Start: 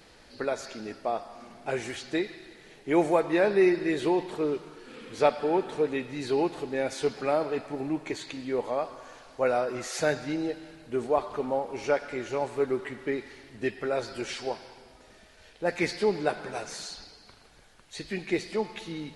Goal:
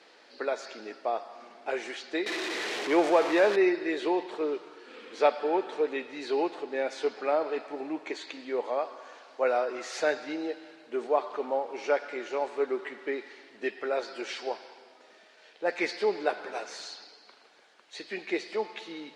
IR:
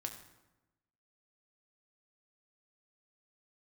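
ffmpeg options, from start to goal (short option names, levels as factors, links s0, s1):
-filter_complex "[0:a]asettb=1/sr,asplit=3[s0][s1][s2];[s0]atrim=end=2.264[s3];[s1]atrim=start=2.26:end=3.56,asetpts=PTS-STARTPTS,afade=t=in:d=0.004:c=qsin,afade=t=out:st=1.296:d=0.004:c=qsin,aeval=exprs='val(0)+0.5*0.0501*sgn(val(0))':c=same[s4];[s2]atrim=start=3.556[s5];[s3][s4]acrossfade=d=0.004:c1=hsin:c2=qsin[s6];[s6][s5]acrossfade=d=0.004:c1=qsin:c2=hsin,lowpass=5300,acrossover=split=280|4100[s7][s8][s9];[s7]acrusher=bits=2:mix=0:aa=0.5[s10];[s10][s8][s9]amix=inputs=3:normalize=0,asplit=3[s11][s12][s13];[s11]afade=t=out:st=6.55:d=0.02[s14];[s12]adynamicequalizer=threshold=0.00562:dfrequency=2400:dqfactor=0.7:tfrequency=2400:tqfactor=0.7:attack=5:release=100:ratio=0.375:range=2:mode=cutabove:tftype=highshelf,afade=t=in:st=6.55:d=0.02,afade=t=out:st=7.45:d=0.02[s15];[s13]afade=t=in:st=7.45:d=0.02[s16];[s14][s15][s16]amix=inputs=3:normalize=0"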